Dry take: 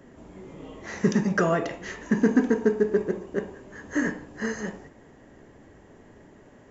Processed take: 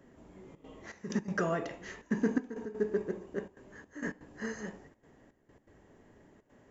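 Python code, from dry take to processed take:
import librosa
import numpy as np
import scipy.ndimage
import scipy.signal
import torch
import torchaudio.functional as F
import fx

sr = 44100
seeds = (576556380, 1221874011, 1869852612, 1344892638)

y = fx.step_gate(x, sr, bpm=164, pattern='xxxxxx.xxx..x.xx', floor_db=-12.0, edge_ms=4.5)
y = F.gain(torch.from_numpy(y), -8.5).numpy()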